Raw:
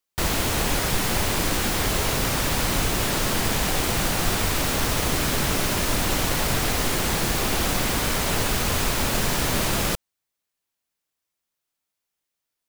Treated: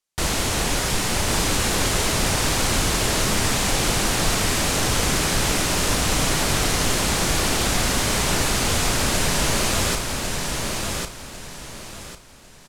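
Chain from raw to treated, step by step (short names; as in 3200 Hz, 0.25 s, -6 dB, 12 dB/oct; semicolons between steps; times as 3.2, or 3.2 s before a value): LPF 11000 Hz 12 dB/oct; bell 7600 Hz +4 dB 1.6 oct; doubler 34 ms -11.5 dB; on a send: feedback echo 1.099 s, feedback 29%, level -4 dB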